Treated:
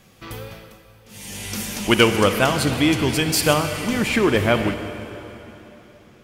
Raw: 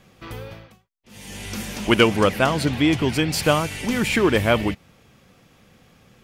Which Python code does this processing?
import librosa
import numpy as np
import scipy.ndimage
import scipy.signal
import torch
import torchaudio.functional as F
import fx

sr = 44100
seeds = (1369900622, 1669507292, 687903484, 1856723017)

y = fx.high_shelf(x, sr, hz=5400.0, db=fx.steps((0.0, 8.5), (3.53, -2.5)))
y = fx.rev_plate(y, sr, seeds[0], rt60_s=3.4, hf_ratio=0.9, predelay_ms=0, drr_db=7.5)